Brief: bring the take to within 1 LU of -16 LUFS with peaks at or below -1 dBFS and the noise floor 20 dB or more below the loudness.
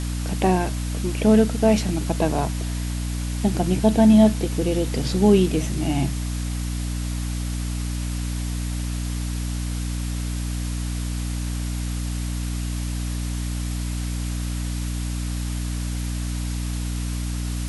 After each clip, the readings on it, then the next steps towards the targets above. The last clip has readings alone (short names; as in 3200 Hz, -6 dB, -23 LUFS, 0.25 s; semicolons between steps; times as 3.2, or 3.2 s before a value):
hum 60 Hz; harmonics up to 300 Hz; hum level -24 dBFS; noise floor -27 dBFS; noise floor target -44 dBFS; loudness -24.0 LUFS; peak -4.0 dBFS; loudness target -16.0 LUFS
-> de-hum 60 Hz, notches 5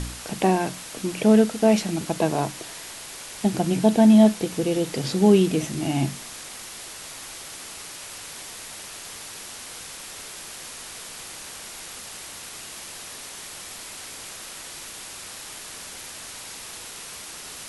hum none; noise floor -39 dBFS; noise floor target -42 dBFS
-> noise print and reduce 6 dB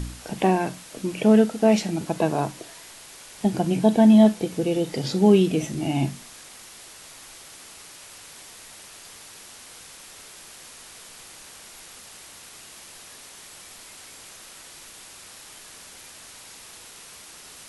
noise floor -45 dBFS; loudness -21.0 LUFS; peak -4.5 dBFS; loudness target -16.0 LUFS
-> gain +5 dB; limiter -1 dBFS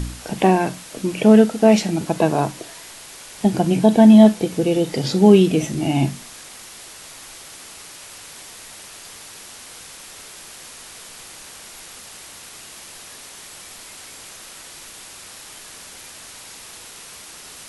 loudness -16.0 LUFS; peak -1.0 dBFS; noise floor -40 dBFS